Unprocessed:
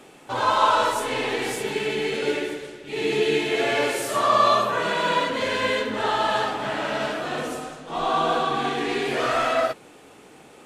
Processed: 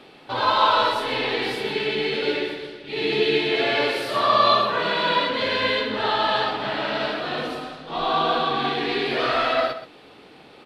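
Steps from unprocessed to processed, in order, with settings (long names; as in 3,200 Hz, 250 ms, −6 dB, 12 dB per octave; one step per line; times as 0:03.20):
high shelf with overshoot 5,500 Hz −9 dB, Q 3
single-tap delay 126 ms −12.5 dB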